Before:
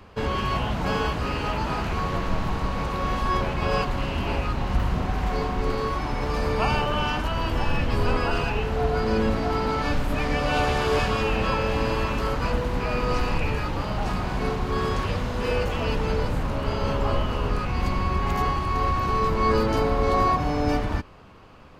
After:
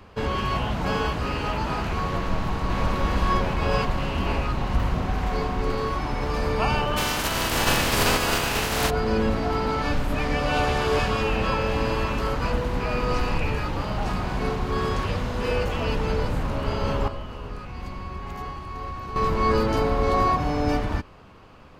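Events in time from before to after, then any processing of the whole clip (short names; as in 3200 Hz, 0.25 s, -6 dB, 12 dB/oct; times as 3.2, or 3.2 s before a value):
2.17–2.81 echo throw 0.52 s, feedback 70%, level -1 dB
6.96–8.89 spectral contrast lowered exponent 0.43
17.08–19.16 gain -10 dB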